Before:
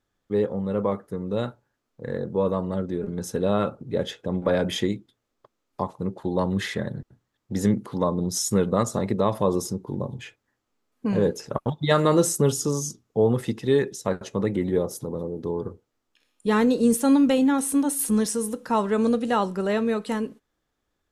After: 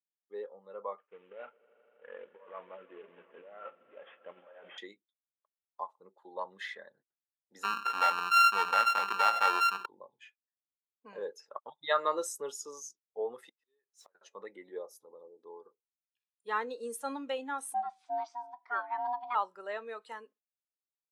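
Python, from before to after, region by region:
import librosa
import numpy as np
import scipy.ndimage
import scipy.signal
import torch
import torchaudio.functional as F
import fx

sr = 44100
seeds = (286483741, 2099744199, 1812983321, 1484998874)

y = fx.chain(x, sr, fx.cvsd(bps=16000),
    fx.over_compress(threshold_db=-27.0, ratio=-0.5),
    fx.echo_swell(ms=80, loudest=5, wet_db=-18.0), at=(0.98, 4.78))
y = fx.chain(y, sr, fx.sample_sort(block=32),
    fx.high_shelf(hz=6700.0, db=-6.5),
    fx.env_flatten(amount_pct=70), at=(7.63, 9.86))
y = fx.chain(y, sr, fx.zero_step(step_db=-37.0),
    fx.gate_flip(shuts_db=-25.0, range_db=-30), at=(13.49, 14.15))
y = fx.chain(y, sr, fx.lowpass(hz=4700.0, slope=24),
    fx.ring_mod(carrier_hz=490.0), at=(17.74, 19.35))
y = scipy.signal.sosfilt(scipy.signal.butter(2, 860.0, 'highpass', fs=sr, output='sos'), y)
y = fx.dynamic_eq(y, sr, hz=8700.0, q=0.84, threshold_db=-44.0, ratio=4.0, max_db=-4)
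y = fx.spectral_expand(y, sr, expansion=1.5)
y = y * 10.0 ** (-5.0 / 20.0)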